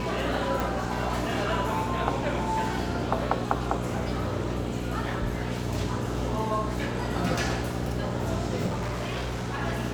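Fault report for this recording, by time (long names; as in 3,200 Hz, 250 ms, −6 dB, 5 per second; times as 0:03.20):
mains hum 60 Hz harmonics 7 −33 dBFS
0:00.60: click
0:08.66–0:09.62: clipping −26.5 dBFS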